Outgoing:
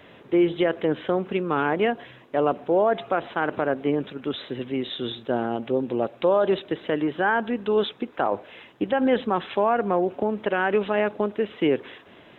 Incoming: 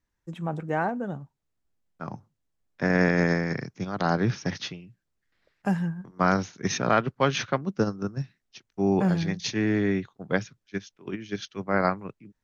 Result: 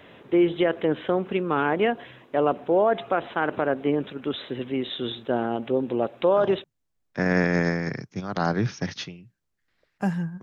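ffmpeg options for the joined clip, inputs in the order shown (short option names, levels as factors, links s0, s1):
-filter_complex "[0:a]apad=whole_dur=10.42,atrim=end=10.42,atrim=end=6.64,asetpts=PTS-STARTPTS[s0];[1:a]atrim=start=1.92:end=6.06,asetpts=PTS-STARTPTS[s1];[s0][s1]acrossfade=d=0.36:c1=log:c2=log"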